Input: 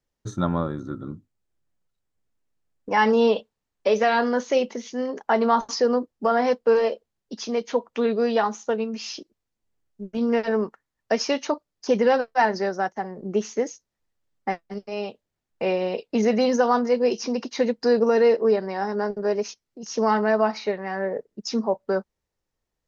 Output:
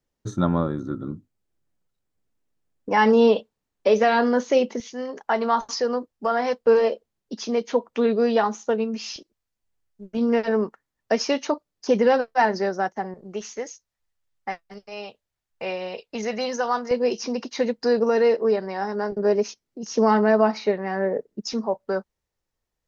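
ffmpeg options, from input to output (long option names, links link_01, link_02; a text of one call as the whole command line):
ffmpeg -i in.wav -af "asetnsamples=nb_out_samples=441:pad=0,asendcmd='4.8 equalizer g -5;6.66 equalizer g 2.5;9.16 equalizer g -6.5;10.11 equalizer g 1.5;13.14 equalizer g -10.5;16.91 equalizer g -1.5;19.12 equalizer g 5;21.53 equalizer g -2.5',equalizer=frequency=270:width_type=o:width=2.2:gain=3.5" out.wav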